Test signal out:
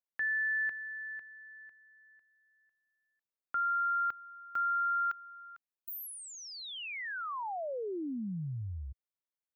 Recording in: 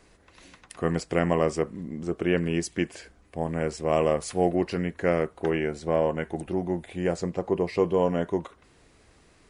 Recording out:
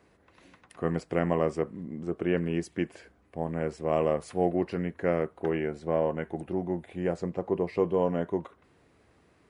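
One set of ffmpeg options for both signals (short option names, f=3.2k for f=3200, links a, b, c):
-af "highpass=77,equalizer=f=7k:t=o:w=2.3:g=-10.5,volume=-2.5dB"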